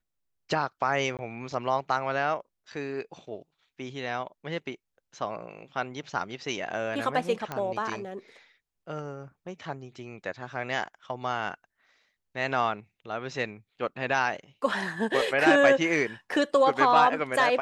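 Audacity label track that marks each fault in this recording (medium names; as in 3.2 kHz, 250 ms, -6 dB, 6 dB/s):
1.170000	1.190000	dropout 18 ms
7.520000	7.520000	pop -18 dBFS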